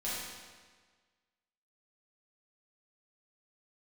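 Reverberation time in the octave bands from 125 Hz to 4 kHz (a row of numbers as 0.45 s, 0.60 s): 1.5 s, 1.5 s, 1.5 s, 1.5 s, 1.5 s, 1.3 s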